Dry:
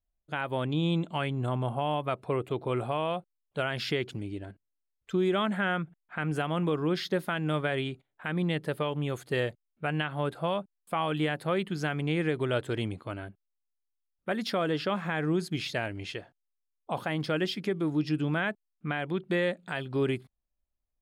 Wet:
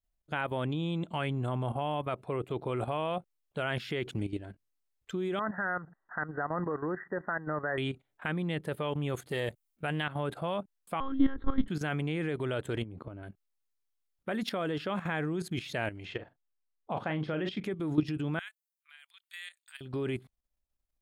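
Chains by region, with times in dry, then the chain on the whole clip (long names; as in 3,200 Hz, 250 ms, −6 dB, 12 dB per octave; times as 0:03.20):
0:05.39–0:07.78: mu-law and A-law mismatch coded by mu + linear-phase brick-wall low-pass 2,000 Hz + low-shelf EQ 390 Hz −11.5 dB
0:09.29–0:10.09: high-shelf EQ 6,400 Hz +11.5 dB + highs frequency-modulated by the lows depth 0.11 ms
0:11.00–0:11.68: low shelf with overshoot 340 Hz +7.5 dB, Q 3 + one-pitch LPC vocoder at 8 kHz 270 Hz + phaser with its sweep stopped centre 680 Hz, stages 6
0:12.82–0:13.23: tilt shelving filter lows +9.5 dB, about 1,400 Hz + downward compressor 10 to 1, threshold −34 dBFS
0:16.05–0:17.64: low-pass filter 5,600 Hz + high-shelf EQ 3,900 Hz −9.5 dB + double-tracking delay 39 ms −9.5 dB
0:18.39–0:19.81: Bessel high-pass filter 1,800 Hz, order 4 + first difference
whole clip: dynamic equaliser 4,900 Hz, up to −7 dB, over −59 dBFS, Q 2.8; output level in coarse steps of 12 dB; level +4 dB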